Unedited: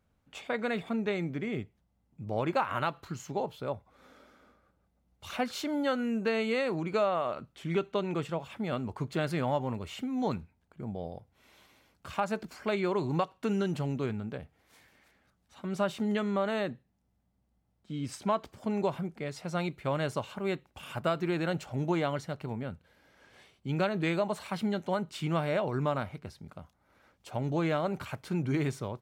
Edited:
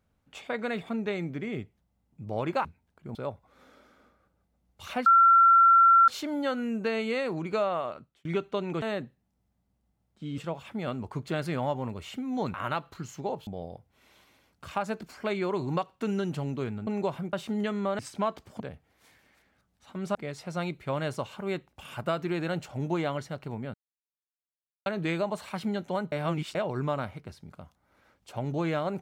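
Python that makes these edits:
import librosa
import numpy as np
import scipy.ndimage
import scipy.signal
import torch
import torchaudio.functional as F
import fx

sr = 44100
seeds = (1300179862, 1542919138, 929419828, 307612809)

y = fx.edit(x, sr, fx.swap(start_s=2.65, length_s=0.93, other_s=10.39, other_length_s=0.5),
    fx.insert_tone(at_s=5.49, length_s=1.02, hz=1360.0, db=-14.5),
    fx.fade_out_span(start_s=7.2, length_s=0.46),
    fx.swap(start_s=14.29, length_s=1.55, other_s=18.67, other_length_s=0.46),
    fx.move(start_s=16.5, length_s=1.56, to_s=8.23),
    fx.silence(start_s=22.72, length_s=1.12),
    fx.reverse_span(start_s=25.1, length_s=0.43), tone=tone)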